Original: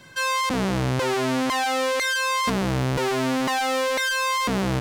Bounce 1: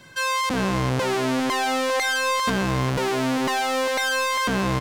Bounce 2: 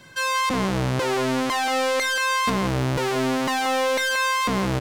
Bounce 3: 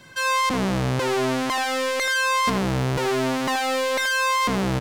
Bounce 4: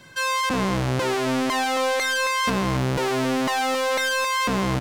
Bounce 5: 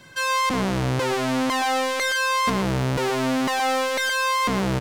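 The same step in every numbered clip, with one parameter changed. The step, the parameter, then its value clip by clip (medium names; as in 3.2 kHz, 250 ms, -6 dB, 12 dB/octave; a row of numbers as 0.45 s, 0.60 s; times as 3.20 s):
speakerphone echo, time: 400 ms, 180 ms, 80 ms, 270 ms, 120 ms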